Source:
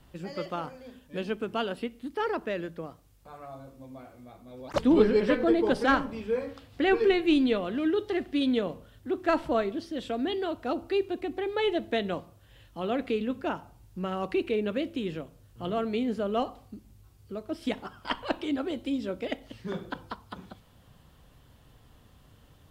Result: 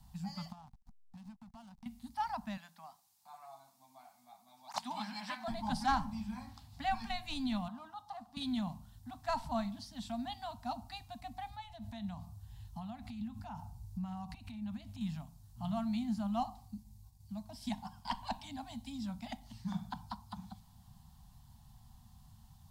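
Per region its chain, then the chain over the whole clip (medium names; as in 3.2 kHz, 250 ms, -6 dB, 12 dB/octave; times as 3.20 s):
0.52–1.86 s: hysteresis with a dead band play -33.5 dBFS + compression 5:1, threshold -45 dBFS
2.57–5.48 s: high-pass 520 Hz + peaking EQ 2.6 kHz +3 dB 1.1 oct
7.68–8.37 s: high-pass 590 Hz 6 dB/octave + resonant high shelf 1.5 kHz -8.5 dB, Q 3
11.50–15.01 s: peaking EQ 79 Hz +13 dB 1.1 oct + compression, threshold -34 dBFS
16.74–18.89 s: band-stop 1.3 kHz, Q 5.1 + expander -55 dBFS
whole clip: elliptic band-stop 220–780 Hz, stop band 50 dB; high-order bell 2 kHz -12 dB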